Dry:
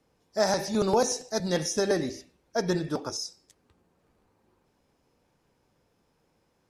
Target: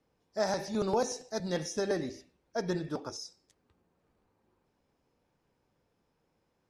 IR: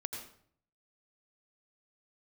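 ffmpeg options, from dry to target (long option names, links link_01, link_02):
-af "highshelf=frequency=7200:gain=-8.5,volume=-5.5dB"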